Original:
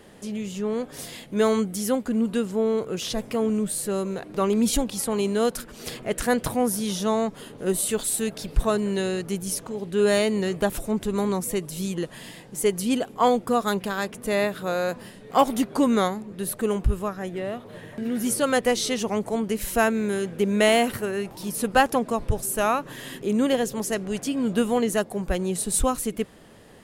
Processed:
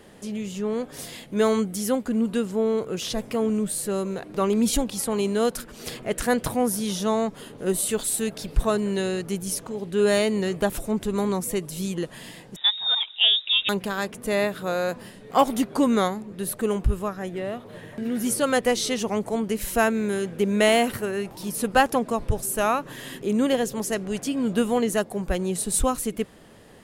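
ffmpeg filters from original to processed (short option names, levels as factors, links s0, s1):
-filter_complex "[0:a]asettb=1/sr,asplit=3[s0][s1][s2];[s0]atrim=end=12.564[s3];[s1]atrim=start=12.56:end=13.69,asetpts=PTS-STARTPTS,afade=t=in:d=0.004:c=qsin,afade=t=out:st=1.126:d=0.004:c=qsin,lowpass=f=3300:t=q:w=0.5098,lowpass=f=3300:t=q:w=0.6013,lowpass=f=3300:t=q:w=0.9,lowpass=f=3300:t=q:w=2.563,afreqshift=-3900[s4];[s2]atrim=start=13.686[s5];[s3][s4]acrossfade=d=0.004:c1=hsin:c2=qsin[s6];[s6][s5]acrossfade=d=0.004:c1=qsin:c2=hsin"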